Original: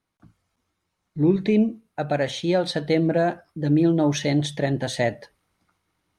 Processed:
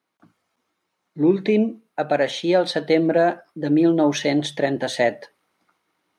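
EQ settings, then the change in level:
high-pass filter 270 Hz 12 dB per octave
parametric band 9,000 Hz −5 dB 1.9 octaves
+4.5 dB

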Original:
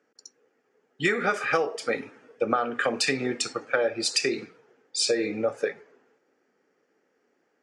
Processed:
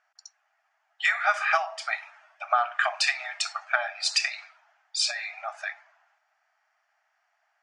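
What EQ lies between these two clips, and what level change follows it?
linear-phase brick-wall high-pass 610 Hz
high-frequency loss of the air 64 metres
+3.5 dB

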